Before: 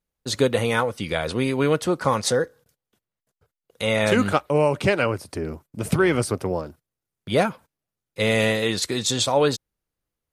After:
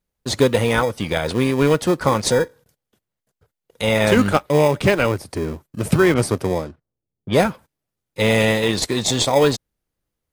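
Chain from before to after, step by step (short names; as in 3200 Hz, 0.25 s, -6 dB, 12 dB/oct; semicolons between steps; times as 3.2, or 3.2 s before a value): in parallel at -9.5 dB: sample-and-hold 31×; 6.14–7.41 on the sum: low-pass opened by the level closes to 410 Hz, open at -20.5 dBFS; gain +2.5 dB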